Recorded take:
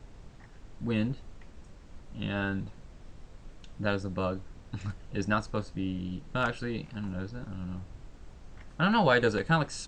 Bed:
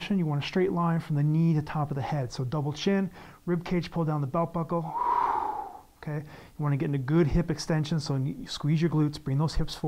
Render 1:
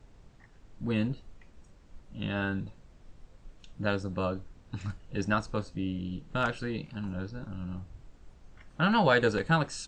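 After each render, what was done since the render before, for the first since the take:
noise reduction from a noise print 6 dB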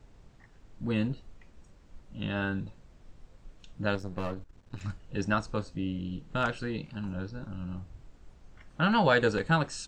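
0:03.95–0:04.81: gain on one half-wave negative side −12 dB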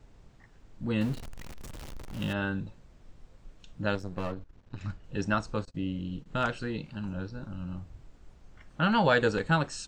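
0:01.01–0:02.33: converter with a step at zero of −37 dBFS
0:04.32–0:05.04: high-frequency loss of the air 73 metres
0:05.65–0:06.26: noise gate −47 dBFS, range −24 dB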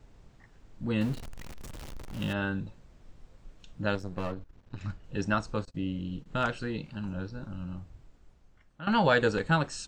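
0:07.55–0:08.87: fade out, to −16 dB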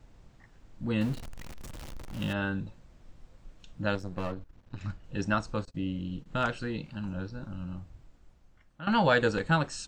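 notch filter 420 Hz, Q 12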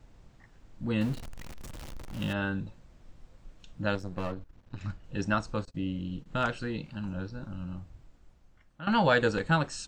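no processing that can be heard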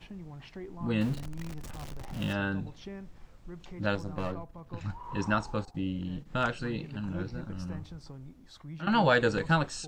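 mix in bed −17.5 dB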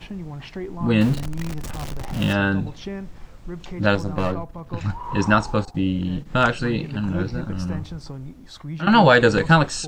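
level +11 dB
brickwall limiter −3 dBFS, peak gain reduction 2 dB

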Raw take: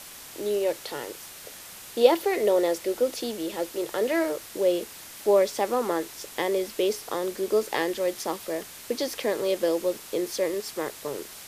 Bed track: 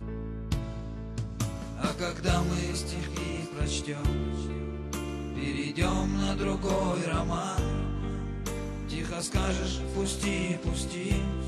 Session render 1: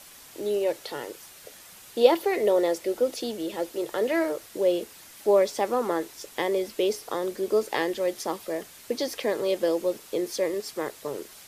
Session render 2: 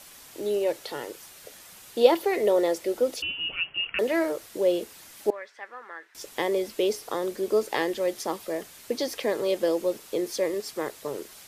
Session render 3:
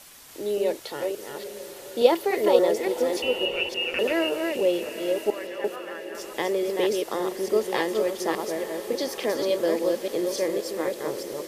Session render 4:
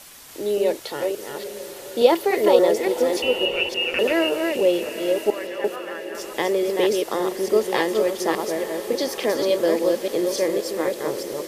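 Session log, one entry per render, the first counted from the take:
broadband denoise 6 dB, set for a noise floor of −44 dBFS
0:03.22–0:03.99: voice inversion scrambler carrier 3,200 Hz; 0:05.30–0:06.15: resonant band-pass 1,700 Hz, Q 4.2
delay that plays each chunk backwards 288 ms, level −3.5 dB; on a send: feedback delay with all-pass diffusion 900 ms, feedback 48%, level −12 dB
level +4 dB; brickwall limiter −3 dBFS, peak gain reduction 2.5 dB

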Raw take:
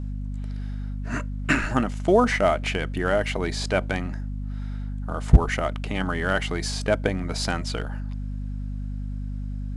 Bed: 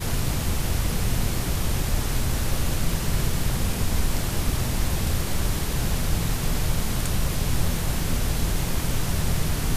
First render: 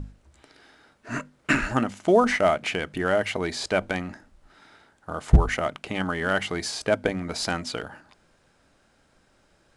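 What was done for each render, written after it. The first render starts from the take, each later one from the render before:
mains-hum notches 50/100/150/200/250 Hz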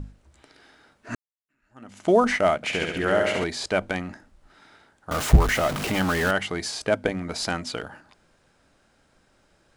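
0:01.15–0:01.99: fade in exponential
0:02.56–0:03.44: flutter between parallel walls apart 11.9 metres, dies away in 1.1 s
0:05.11–0:06.31: converter with a step at zero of −24 dBFS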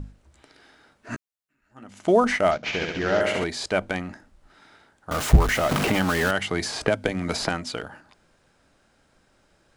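0:01.13–0:01.84: double-tracking delay 14 ms −6 dB
0:02.51–0:03.21: variable-slope delta modulation 32 kbit/s
0:05.71–0:07.49: multiband upward and downward compressor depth 100%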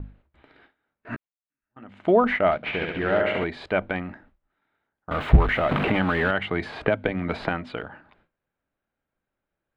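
noise gate with hold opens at −42 dBFS
drawn EQ curve 2,300 Hz 0 dB, 3,800 Hz −7 dB, 5,700 Hz −28 dB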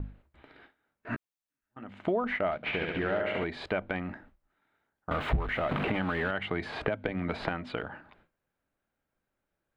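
downward compressor 3 to 1, threshold −29 dBFS, peak gain reduction 15 dB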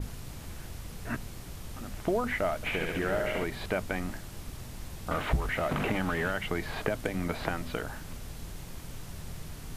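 mix in bed −17.5 dB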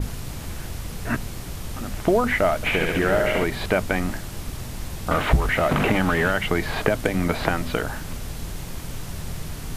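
level +9.5 dB

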